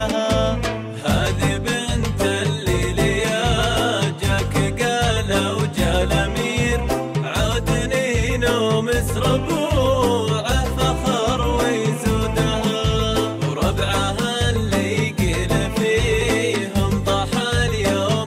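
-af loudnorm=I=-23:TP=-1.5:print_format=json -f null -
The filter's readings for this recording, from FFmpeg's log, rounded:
"input_i" : "-19.7",
"input_tp" : "-7.6",
"input_lra" : "0.7",
"input_thresh" : "-29.7",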